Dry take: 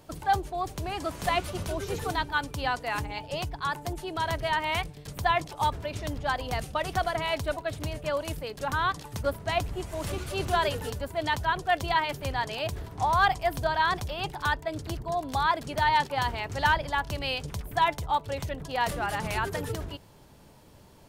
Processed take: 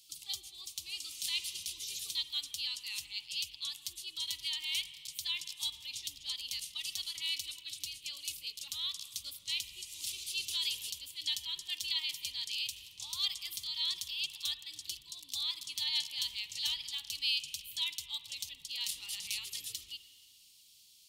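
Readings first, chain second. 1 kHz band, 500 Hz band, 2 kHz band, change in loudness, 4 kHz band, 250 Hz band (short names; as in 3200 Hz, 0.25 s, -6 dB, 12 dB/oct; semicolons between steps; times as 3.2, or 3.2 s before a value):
-35.0 dB, under -40 dB, -15.0 dB, -7.0 dB, +3.0 dB, under -30 dB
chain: inverse Chebyshev high-pass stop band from 1700 Hz, stop band 40 dB; high shelf 4700 Hz -6.5 dB; spring tank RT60 2 s, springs 46/52 ms, chirp 55 ms, DRR 11 dB; gain +8.5 dB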